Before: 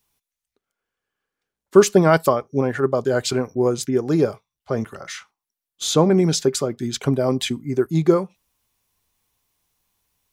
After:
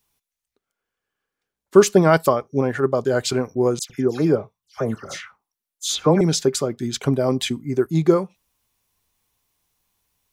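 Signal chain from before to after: 3.79–6.21 s: phase dispersion lows, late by 106 ms, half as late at 2.2 kHz

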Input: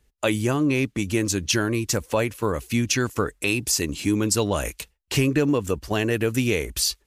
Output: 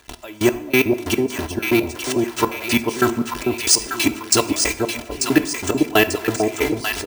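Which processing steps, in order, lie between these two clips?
jump at every zero crossing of -26 dBFS; high-pass 310 Hz 6 dB/octave; peaking EQ 860 Hz +6 dB 0.25 oct; comb 3 ms, depth 69%; trance gate ".x...x.." 184 bpm -24 dB; reverberation RT60 0.90 s, pre-delay 3 ms, DRR 11 dB; careless resampling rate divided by 3×, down filtered, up hold; echo whose repeats swap between lows and highs 445 ms, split 830 Hz, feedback 66%, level -2.5 dB; trim +8 dB

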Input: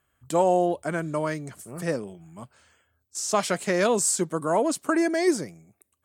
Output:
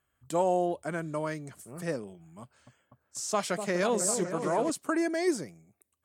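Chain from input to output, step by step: 2.42–4.70 s: delay with an opening low-pass 247 ms, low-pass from 750 Hz, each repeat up 1 oct, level -6 dB; trim -5.5 dB

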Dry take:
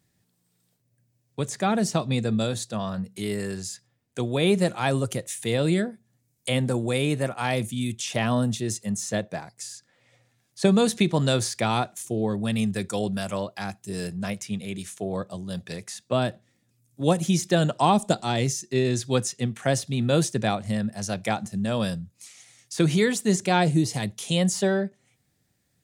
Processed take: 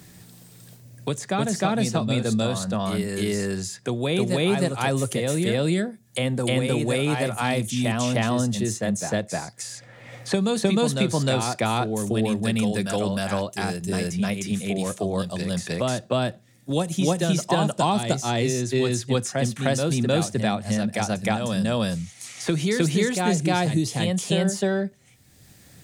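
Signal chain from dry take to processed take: on a send: reverse echo 308 ms -4 dB; on the sum: three bands compressed up and down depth 70%

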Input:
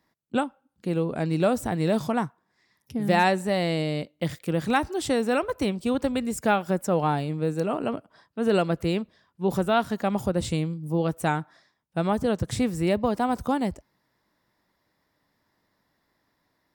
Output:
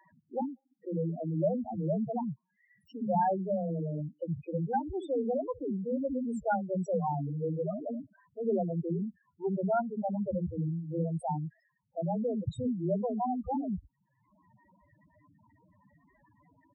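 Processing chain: bands offset in time highs, lows 60 ms, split 300 Hz; upward compressor, threshold -33 dBFS; loudest bins only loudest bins 4; trim -3.5 dB

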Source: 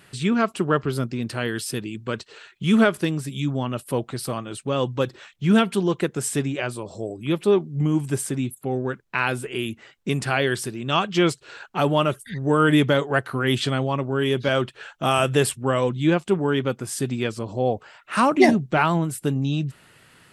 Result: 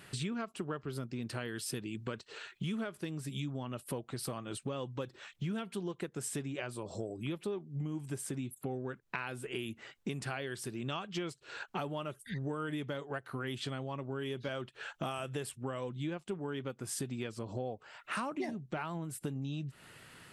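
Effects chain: compression 10:1, threshold -33 dBFS, peak gain reduction 22.5 dB; endings held to a fixed fall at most 530 dB/s; trim -2 dB

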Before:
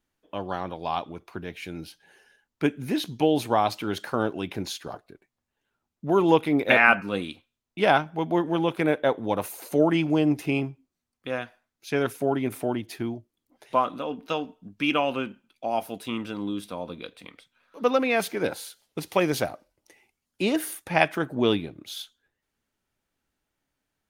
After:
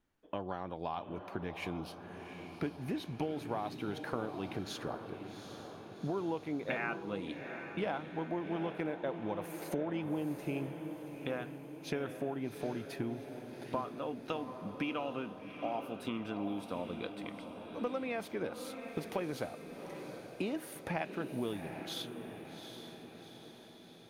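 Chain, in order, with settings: treble shelf 2.9 kHz -9 dB; compression 6:1, threshold -36 dBFS, peak gain reduction 20.5 dB; echo that smears into a reverb 775 ms, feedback 57%, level -8 dB; trim +1 dB

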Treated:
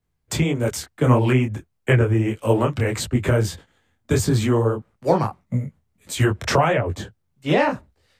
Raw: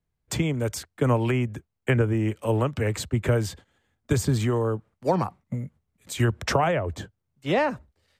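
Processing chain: detune thickener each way 56 cents; trim +8.5 dB

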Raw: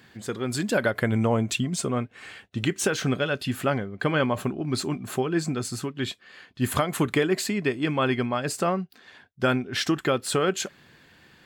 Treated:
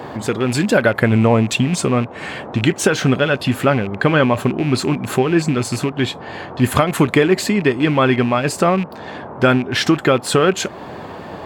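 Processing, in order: rattle on loud lows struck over -32 dBFS, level -29 dBFS; band noise 85–1000 Hz -47 dBFS; treble shelf 3.8 kHz -6.5 dB; in parallel at +2 dB: compression, threshold -37 dBFS, peak gain reduction 17.5 dB; on the sum: trim +8 dB

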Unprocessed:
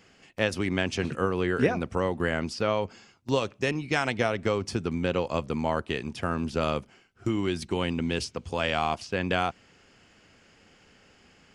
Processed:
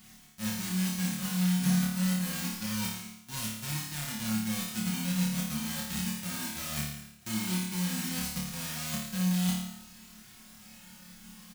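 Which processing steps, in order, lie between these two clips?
formants flattened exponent 0.1; reverse; compression 16:1, threshold -37 dBFS, peak gain reduction 20.5 dB; reverse; resonant low shelf 280 Hz +11 dB, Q 3; comb 5.5 ms, depth 76%; on a send: flutter echo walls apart 4.7 m, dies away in 0.81 s; on the sum: flange 0.29 Hz, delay 2.8 ms, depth 1.5 ms, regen -40%; trim +2.5 dB

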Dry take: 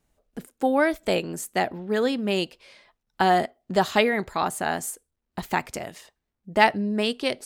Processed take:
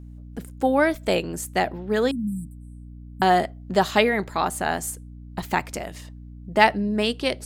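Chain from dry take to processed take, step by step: 2.11–3.22 s: brick-wall FIR band-stop 280–7500 Hz; hum 60 Hz, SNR 16 dB; trim +1.5 dB

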